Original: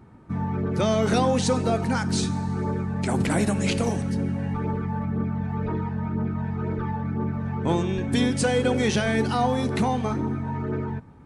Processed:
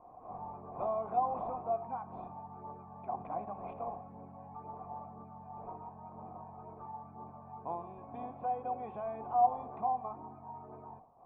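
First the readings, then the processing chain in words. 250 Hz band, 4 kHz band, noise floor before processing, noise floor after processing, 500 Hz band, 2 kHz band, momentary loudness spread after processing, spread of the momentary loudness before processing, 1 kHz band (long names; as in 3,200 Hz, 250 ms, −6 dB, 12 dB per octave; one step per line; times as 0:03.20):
−26.5 dB, below −40 dB, −34 dBFS, −53 dBFS, −14.0 dB, below −30 dB, 16 LU, 6 LU, −4.5 dB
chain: wind on the microphone 480 Hz −36 dBFS
formant resonators in series a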